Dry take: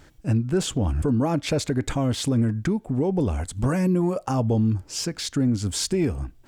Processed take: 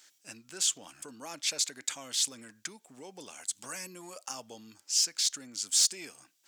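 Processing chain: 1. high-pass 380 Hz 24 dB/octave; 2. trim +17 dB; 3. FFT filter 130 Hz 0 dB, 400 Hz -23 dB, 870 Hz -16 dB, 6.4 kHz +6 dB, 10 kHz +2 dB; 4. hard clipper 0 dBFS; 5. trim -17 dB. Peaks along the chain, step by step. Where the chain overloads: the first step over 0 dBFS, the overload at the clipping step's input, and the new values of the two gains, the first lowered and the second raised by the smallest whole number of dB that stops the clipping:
-15.0 dBFS, +2.0 dBFS, +5.5 dBFS, 0.0 dBFS, -17.0 dBFS; step 2, 5.5 dB; step 2 +11 dB, step 5 -11 dB

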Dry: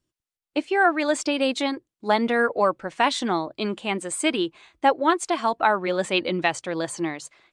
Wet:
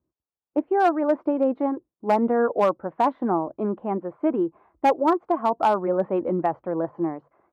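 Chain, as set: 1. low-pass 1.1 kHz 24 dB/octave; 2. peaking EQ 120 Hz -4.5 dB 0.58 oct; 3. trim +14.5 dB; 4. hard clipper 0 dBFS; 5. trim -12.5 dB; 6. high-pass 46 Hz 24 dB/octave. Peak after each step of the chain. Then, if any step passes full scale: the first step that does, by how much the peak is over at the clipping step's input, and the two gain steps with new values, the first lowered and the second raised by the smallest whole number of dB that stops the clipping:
-8.5 dBFS, -8.5 dBFS, +6.0 dBFS, 0.0 dBFS, -12.5 dBFS, -10.5 dBFS; step 3, 6.0 dB; step 3 +8.5 dB, step 5 -6.5 dB

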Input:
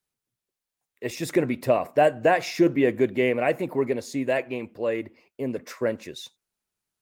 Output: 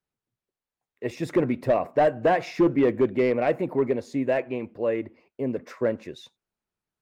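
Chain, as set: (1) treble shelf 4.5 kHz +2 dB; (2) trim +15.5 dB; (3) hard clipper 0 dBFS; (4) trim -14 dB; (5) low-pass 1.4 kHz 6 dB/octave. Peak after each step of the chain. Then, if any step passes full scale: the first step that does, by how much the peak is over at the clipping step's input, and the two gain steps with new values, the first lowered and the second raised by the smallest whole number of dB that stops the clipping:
-8.5 dBFS, +7.0 dBFS, 0.0 dBFS, -14.0 dBFS, -14.0 dBFS; step 2, 7.0 dB; step 2 +8.5 dB, step 4 -7 dB

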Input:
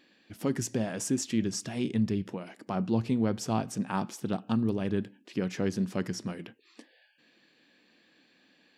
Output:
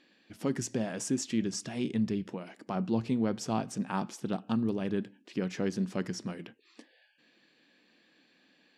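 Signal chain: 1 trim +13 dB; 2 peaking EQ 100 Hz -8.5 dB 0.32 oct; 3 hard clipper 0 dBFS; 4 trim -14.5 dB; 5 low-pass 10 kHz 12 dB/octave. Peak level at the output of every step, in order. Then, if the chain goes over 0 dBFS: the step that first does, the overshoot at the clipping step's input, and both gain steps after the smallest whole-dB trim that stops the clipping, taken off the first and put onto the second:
-2.0 dBFS, -1.5 dBFS, -1.5 dBFS, -16.0 dBFS, -16.0 dBFS; nothing clips

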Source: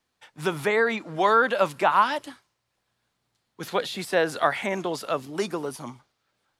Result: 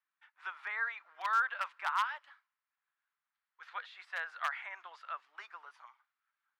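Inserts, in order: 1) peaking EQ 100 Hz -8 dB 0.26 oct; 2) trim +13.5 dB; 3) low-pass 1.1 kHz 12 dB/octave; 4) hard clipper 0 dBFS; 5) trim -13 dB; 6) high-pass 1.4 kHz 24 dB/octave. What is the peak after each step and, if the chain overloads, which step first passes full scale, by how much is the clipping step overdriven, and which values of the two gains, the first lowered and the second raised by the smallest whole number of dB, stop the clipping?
-6.5 dBFS, +7.0 dBFS, +4.0 dBFS, 0.0 dBFS, -13.0 dBFS, -18.5 dBFS; step 2, 4.0 dB; step 2 +9.5 dB, step 5 -9 dB

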